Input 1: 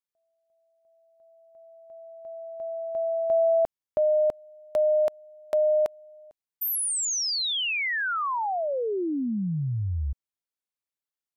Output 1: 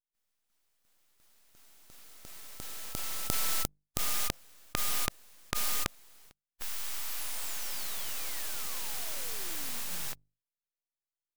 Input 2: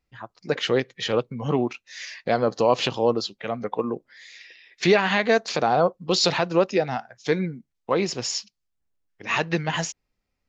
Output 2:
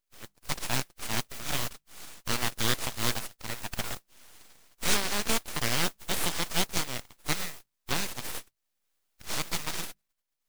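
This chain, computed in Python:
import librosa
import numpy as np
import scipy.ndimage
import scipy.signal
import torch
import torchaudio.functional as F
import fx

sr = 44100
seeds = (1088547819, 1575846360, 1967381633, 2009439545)

y = fx.spec_flatten(x, sr, power=0.23)
y = fx.hum_notches(y, sr, base_hz=50, count=2)
y = np.abs(y)
y = y * 10.0 ** (-5.5 / 20.0)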